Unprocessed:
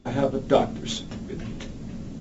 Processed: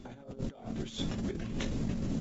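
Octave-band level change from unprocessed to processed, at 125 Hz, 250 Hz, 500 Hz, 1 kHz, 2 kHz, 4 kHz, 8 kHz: −3.5 dB, −6.0 dB, −17.5 dB, −19.5 dB, −8.0 dB, −8.5 dB, can't be measured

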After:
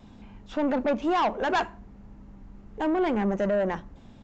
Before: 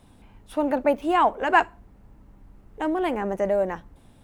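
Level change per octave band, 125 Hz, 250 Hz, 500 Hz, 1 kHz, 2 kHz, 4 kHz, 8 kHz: +4.0 dB, +0.5 dB, −2.5 dB, −5.0 dB, −5.5 dB, 0.0 dB, can't be measured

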